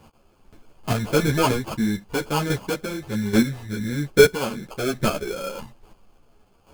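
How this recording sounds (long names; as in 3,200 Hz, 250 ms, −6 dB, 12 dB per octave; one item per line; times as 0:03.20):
aliases and images of a low sample rate 1,900 Hz, jitter 0%
chopped level 1.2 Hz, depth 65%, duty 10%
a shimmering, thickened sound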